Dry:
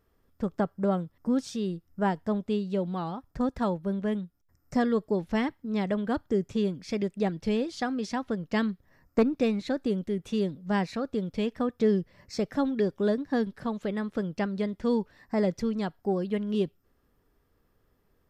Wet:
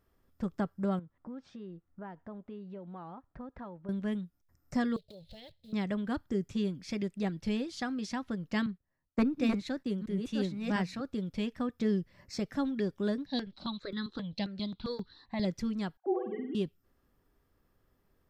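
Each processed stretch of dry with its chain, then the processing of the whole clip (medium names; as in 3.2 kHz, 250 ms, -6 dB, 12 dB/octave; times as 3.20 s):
0.99–3.89 s: low-pass 1.7 kHz + bass shelf 390 Hz -7 dB + compression 2.5:1, threshold -41 dBFS
4.96–5.73 s: block-companded coder 5-bit + FFT filter 140 Hz 0 dB, 280 Hz -24 dB, 570 Hz 0 dB, 1.1 kHz -29 dB, 2.3 kHz -10 dB, 4.1 kHz +10 dB, 5.8 kHz -14 dB + compression, threshold -43 dBFS
8.66–11.01 s: chunks repeated in reverse 699 ms, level -4 dB + gate -47 dBFS, range -13 dB + three bands expanded up and down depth 40%
13.26–15.45 s: resonant low-pass 4 kHz, resonance Q 14 + stepped phaser 7.5 Hz 350–2500 Hz
15.97–16.55 s: formants replaced by sine waves + low-pass 1.5 kHz + flutter echo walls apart 8.6 m, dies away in 0.65 s
whole clip: band-stop 450 Hz, Q 12; dynamic bell 610 Hz, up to -6 dB, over -42 dBFS, Q 0.82; trim -2.5 dB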